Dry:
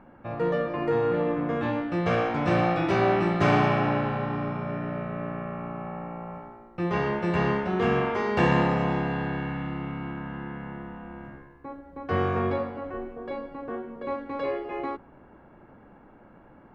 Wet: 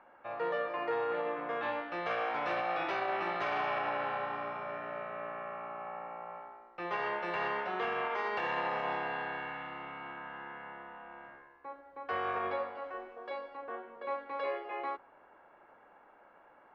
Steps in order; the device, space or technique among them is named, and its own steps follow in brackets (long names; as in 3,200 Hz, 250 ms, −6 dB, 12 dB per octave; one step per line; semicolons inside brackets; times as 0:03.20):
0:12.75–0:13.57: bass and treble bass −3 dB, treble +9 dB
DJ mixer with the lows and highs turned down (three-way crossover with the lows and the highs turned down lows −24 dB, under 500 Hz, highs −21 dB, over 5,100 Hz; brickwall limiter −23 dBFS, peak gain reduction 10 dB)
level −2 dB